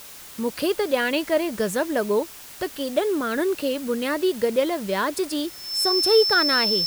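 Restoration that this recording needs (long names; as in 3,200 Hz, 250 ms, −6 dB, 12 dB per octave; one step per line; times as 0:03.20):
notch filter 5,300 Hz, Q 30
broadband denoise 27 dB, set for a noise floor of −42 dBFS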